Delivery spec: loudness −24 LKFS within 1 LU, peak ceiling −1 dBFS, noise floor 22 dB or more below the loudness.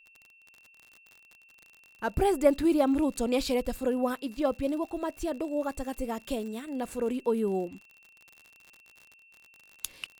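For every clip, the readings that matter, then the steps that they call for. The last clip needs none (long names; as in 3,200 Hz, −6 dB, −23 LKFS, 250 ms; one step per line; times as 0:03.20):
crackle rate 50 per second; interfering tone 2,700 Hz; level of the tone −56 dBFS; integrated loudness −29.5 LKFS; sample peak −9.0 dBFS; target loudness −24.0 LKFS
→ click removal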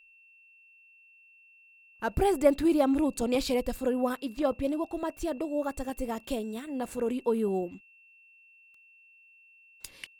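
crackle rate 0.88 per second; interfering tone 2,700 Hz; level of the tone −56 dBFS
→ notch filter 2,700 Hz, Q 30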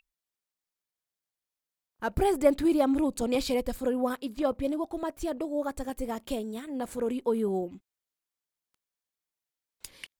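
interfering tone none found; integrated loudness −29.5 LKFS; sample peak −9.0 dBFS; target loudness −24.0 LKFS
→ level +5.5 dB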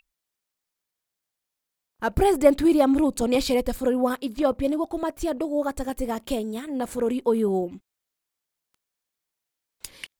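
integrated loudness −24.0 LKFS; sample peak −3.5 dBFS; background noise floor −85 dBFS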